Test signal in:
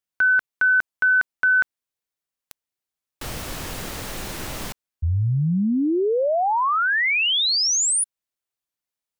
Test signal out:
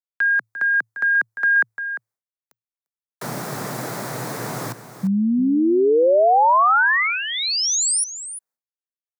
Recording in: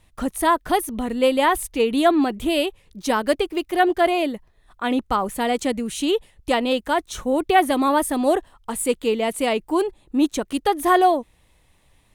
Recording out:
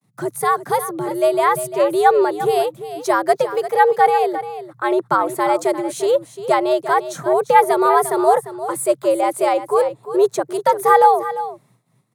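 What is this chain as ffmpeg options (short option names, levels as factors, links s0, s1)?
-filter_complex "[0:a]equalizer=f=2800:t=o:w=0.7:g=-11.5,aecho=1:1:348:0.237,agate=range=0.0224:threshold=0.00316:ratio=3:release=292:detection=peak,afreqshift=110,acrossover=split=380|2100[s0][s1][s2];[s1]dynaudnorm=f=430:g=7:m=1.88[s3];[s0][s3][s2]amix=inputs=3:normalize=0,volume=1.12"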